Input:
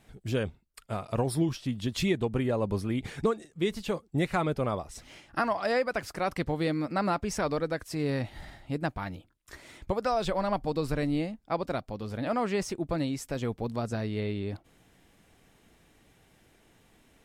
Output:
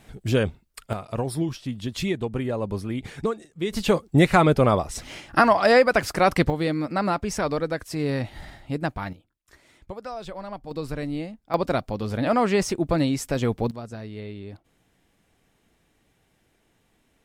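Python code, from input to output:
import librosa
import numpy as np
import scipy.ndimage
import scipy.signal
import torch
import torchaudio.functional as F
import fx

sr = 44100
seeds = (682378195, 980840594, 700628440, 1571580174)

y = fx.gain(x, sr, db=fx.steps((0.0, 8.0), (0.93, 1.0), (3.73, 11.0), (6.5, 4.0), (9.13, -7.0), (10.71, -1.0), (11.54, 8.0), (13.71, -4.5)))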